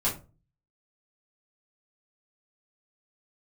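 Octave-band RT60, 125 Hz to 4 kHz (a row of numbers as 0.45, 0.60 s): 0.60, 0.45, 0.35, 0.30, 0.25, 0.20 s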